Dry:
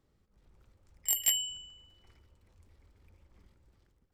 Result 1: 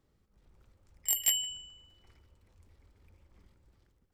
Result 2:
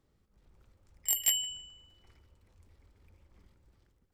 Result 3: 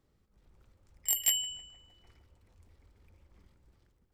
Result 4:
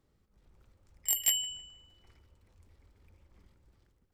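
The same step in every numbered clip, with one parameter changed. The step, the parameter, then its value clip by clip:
filtered feedback delay, feedback: 23%, 35%, 85%, 54%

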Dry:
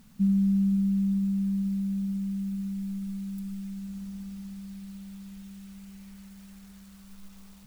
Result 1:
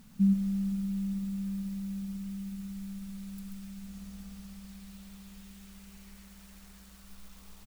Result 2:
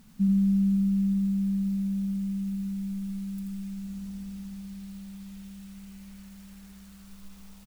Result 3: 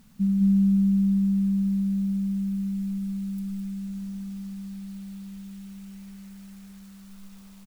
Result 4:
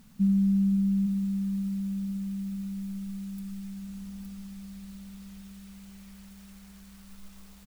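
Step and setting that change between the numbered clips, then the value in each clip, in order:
delay, time: 135 ms, 83 ms, 209 ms, 865 ms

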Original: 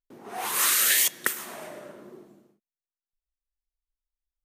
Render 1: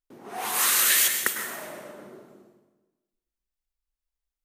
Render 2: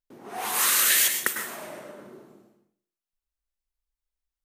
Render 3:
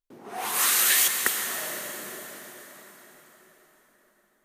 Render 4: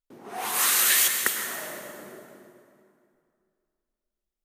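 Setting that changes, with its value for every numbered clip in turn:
plate-style reverb, RT60: 1.1 s, 0.51 s, 5.3 s, 2.4 s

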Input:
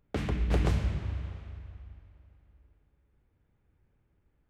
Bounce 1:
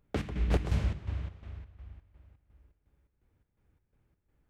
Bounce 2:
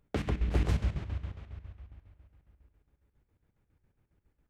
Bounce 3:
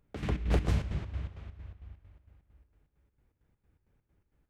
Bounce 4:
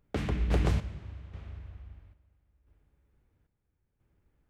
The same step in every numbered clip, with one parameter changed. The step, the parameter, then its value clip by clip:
square tremolo, rate: 2.8 Hz, 7.3 Hz, 4.4 Hz, 0.75 Hz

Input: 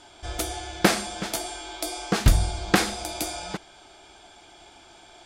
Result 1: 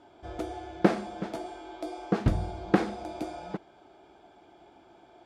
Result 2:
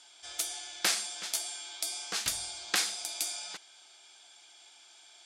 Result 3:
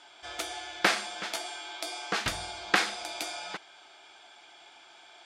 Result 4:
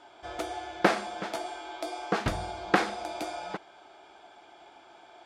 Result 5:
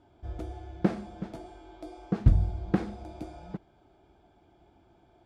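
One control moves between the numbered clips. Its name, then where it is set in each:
band-pass filter, frequency: 310 Hz, 7 kHz, 2.1 kHz, 810 Hz, 110 Hz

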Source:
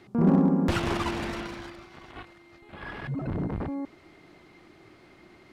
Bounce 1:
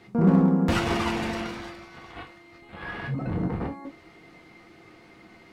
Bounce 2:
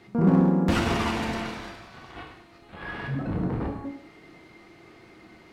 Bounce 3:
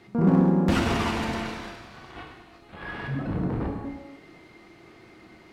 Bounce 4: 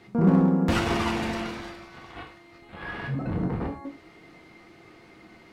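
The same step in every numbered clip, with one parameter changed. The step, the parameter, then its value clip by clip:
gated-style reverb, gate: 90 ms, 270 ms, 400 ms, 140 ms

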